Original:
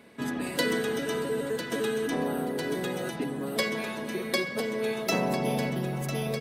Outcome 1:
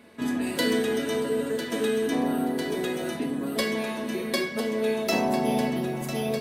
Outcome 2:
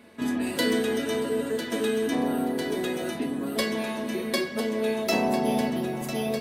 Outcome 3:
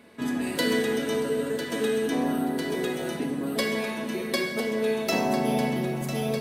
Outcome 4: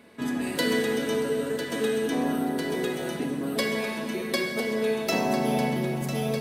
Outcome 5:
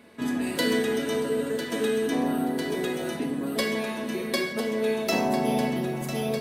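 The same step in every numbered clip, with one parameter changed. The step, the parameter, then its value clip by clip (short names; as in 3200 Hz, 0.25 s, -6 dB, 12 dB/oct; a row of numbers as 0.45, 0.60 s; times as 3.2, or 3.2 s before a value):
non-linear reverb, gate: 130, 80, 330, 540, 200 ms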